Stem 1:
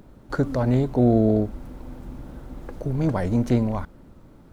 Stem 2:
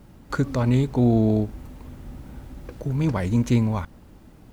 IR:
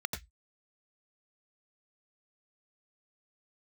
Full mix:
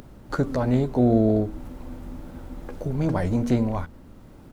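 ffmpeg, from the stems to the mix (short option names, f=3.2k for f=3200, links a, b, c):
-filter_complex "[0:a]bandreject=f=79.29:t=h:w=4,bandreject=f=158.58:t=h:w=4,bandreject=f=237.87:t=h:w=4,bandreject=f=317.16:t=h:w=4,bandreject=f=396.45:t=h:w=4,bandreject=f=475.74:t=h:w=4,volume=-0.5dB[a];[1:a]acompressor=threshold=-28dB:ratio=6,adelay=12,volume=-4dB[b];[a][b]amix=inputs=2:normalize=0,acompressor=mode=upward:threshold=-41dB:ratio=2.5"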